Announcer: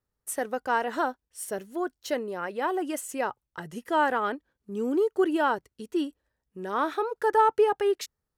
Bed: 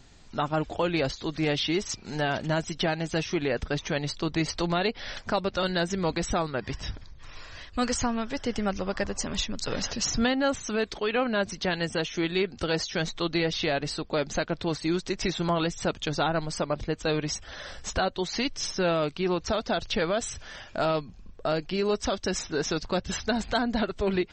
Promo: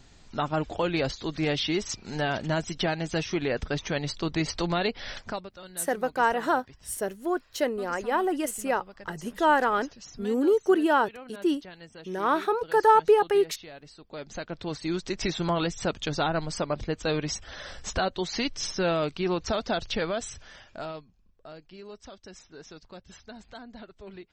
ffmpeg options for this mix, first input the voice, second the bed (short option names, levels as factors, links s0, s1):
-filter_complex "[0:a]adelay=5500,volume=1.33[s0];[1:a]volume=7.08,afade=t=out:st=5.11:d=0.39:silence=0.133352,afade=t=in:st=13.98:d=1.26:silence=0.133352,afade=t=out:st=19.74:d=1.41:silence=0.133352[s1];[s0][s1]amix=inputs=2:normalize=0"